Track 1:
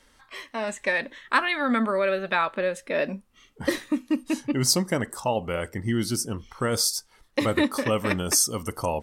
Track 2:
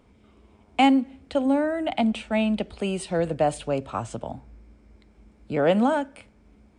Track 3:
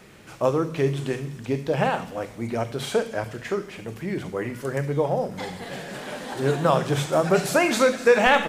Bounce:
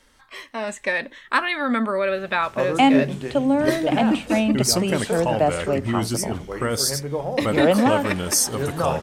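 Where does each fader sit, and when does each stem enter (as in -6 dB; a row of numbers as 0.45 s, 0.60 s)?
+1.5 dB, +2.5 dB, -3.5 dB; 0.00 s, 2.00 s, 2.15 s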